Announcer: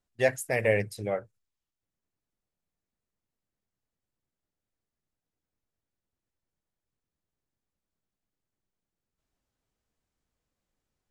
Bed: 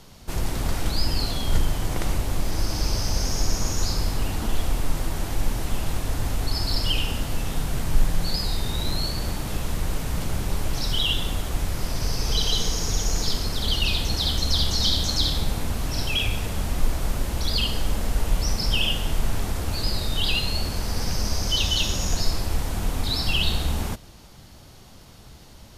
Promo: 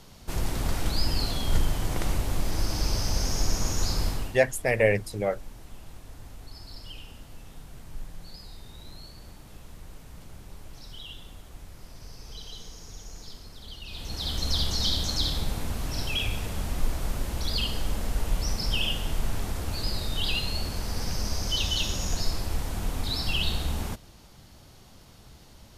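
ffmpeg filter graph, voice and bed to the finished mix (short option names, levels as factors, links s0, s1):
-filter_complex "[0:a]adelay=4150,volume=1.41[s0];[1:a]volume=3.98,afade=t=out:st=4.07:d=0.32:silence=0.149624,afade=t=in:st=13.87:d=0.61:silence=0.188365[s1];[s0][s1]amix=inputs=2:normalize=0"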